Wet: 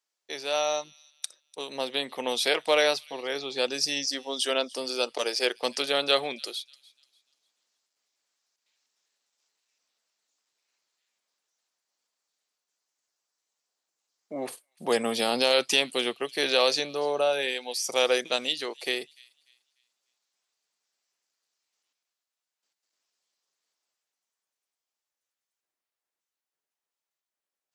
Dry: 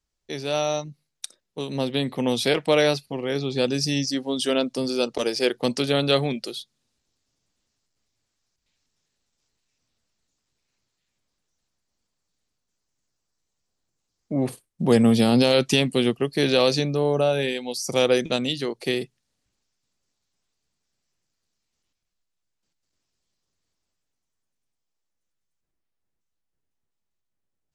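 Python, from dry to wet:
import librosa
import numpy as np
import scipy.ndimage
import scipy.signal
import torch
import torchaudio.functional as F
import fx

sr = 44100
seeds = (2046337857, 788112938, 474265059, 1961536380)

y = scipy.signal.sosfilt(scipy.signal.butter(2, 590.0, 'highpass', fs=sr, output='sos'), x)
y = fx.echo_wet_highpass(y, sr, ms=296, feedback_pct=32, hz=3000.0, wet_db=-20.5)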